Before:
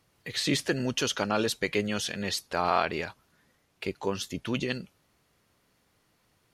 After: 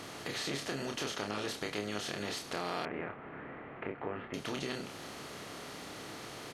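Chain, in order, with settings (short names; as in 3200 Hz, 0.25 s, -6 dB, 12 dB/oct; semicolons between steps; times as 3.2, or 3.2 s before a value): per-bin compression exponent 0.4; doubler 29 ms -4 dB; compressor 2:1, threshold -30 dBFS, peak gain reduction 8.5 dB; 2.85–4.34 steep low-pass 2300 Hz 36 dB/oct; gain -9 dB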